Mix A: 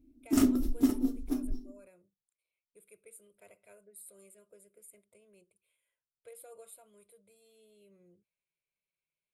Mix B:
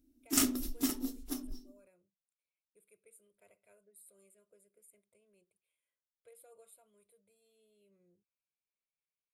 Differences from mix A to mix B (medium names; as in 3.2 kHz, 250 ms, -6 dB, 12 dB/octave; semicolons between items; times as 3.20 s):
speech -8.0 dB; background: add tilt shelf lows -9 dB, about 1.2 kHz